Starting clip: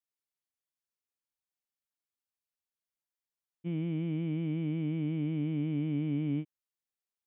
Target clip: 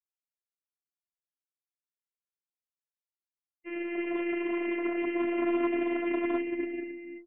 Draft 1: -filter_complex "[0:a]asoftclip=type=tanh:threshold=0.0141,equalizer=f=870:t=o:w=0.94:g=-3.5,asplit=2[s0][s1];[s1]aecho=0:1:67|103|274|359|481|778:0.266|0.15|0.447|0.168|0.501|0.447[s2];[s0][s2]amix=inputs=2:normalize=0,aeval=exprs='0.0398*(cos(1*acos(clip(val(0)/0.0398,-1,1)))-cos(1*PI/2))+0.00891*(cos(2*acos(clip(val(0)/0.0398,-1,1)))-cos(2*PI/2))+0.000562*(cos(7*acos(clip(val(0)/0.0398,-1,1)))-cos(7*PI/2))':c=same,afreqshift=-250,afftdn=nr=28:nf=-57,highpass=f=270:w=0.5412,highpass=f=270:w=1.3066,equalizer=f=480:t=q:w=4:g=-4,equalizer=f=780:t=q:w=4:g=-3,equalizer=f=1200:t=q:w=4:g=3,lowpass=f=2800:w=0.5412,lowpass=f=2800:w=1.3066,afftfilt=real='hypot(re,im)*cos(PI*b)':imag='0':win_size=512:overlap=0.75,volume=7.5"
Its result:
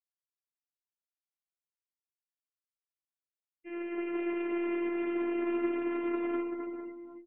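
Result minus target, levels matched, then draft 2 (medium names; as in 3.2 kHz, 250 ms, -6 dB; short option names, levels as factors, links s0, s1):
saturation: distortion +13 dB
-filter_complex "[0:a]asoftclip=type=tanh:threshold=0.0531,equalizer=f=870:t=o:w=0.94:g=-3.5,asplit=2[s0][s1];[s1]aecho=0:1:67|103|274|359|481|778:0.266|0.15|0.447|0.168|0.501|0.447[s2];[s0][s2]amix=inputs=2:normalize=0,aeval=exprs='0.0398*(cos(1*acos(clip(val(0)/0.0398,-1,1)))-cos(1*PI/2))+0.00891*(cos(2*acos(clip(val(0)/0.0398,-1,1)))-cos(2*PI/2))+0.000562*(cos(7*acos(clip(val(0)/0.0398,-1,1)))-cos(7*PI/2))':c=same,afreqshift=-250,afftdn=nr=28:nf=-57,highpass=f=270:w=0.5412,highpass=f=270:w=1.3066,equalizer=f=480:t=q:w=4:g=-4,equalizer=f=780:t=q:w=4:g=-3,equalizer=f=1200:t=q:w=4:g=3,lowpass=f=2800:w=0.5412,lowpass=f=2800:w=1.3066,afftfilt=real='hypot(re,im)*cos(PI*b)':imag='0':win_size=512:overlap=0.75,volume=7.5"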